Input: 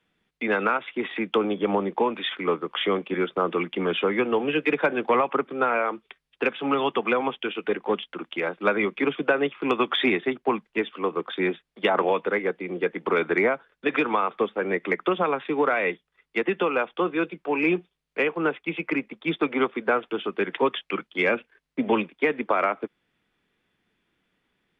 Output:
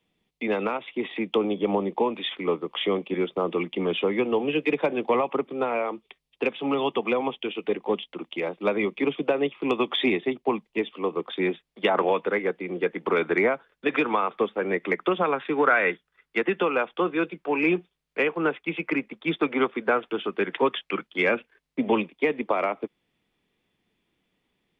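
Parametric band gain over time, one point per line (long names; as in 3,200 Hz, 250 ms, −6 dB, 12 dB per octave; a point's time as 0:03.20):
parametric band 1,500 Hz 0.56 octaves
0:10.93 −13.5 dB
0:11.96 −2.5 dB
0:15.11 −2.5 dB
0:15.87 +9 dB
0:16.67 −0.5 dB
0:21.31 −0.5 dB
0:22.27 −9.5 dB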